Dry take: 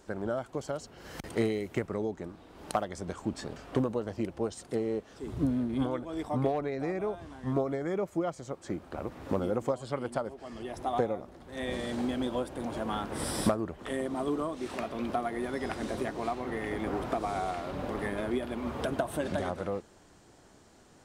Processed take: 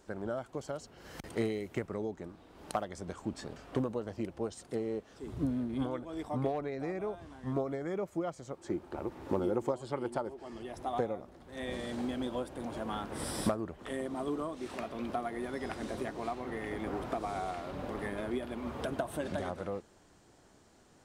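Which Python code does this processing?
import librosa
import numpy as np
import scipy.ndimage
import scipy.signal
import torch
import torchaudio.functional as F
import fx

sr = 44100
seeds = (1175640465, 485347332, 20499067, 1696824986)

y = fx.small_body(x, sr, hz=(360.0, 880.0), ring_ms=45, db=9, at=(8.58, 10.58))
y = F.gain(torch.from_numpy(y), -4.0).numpy()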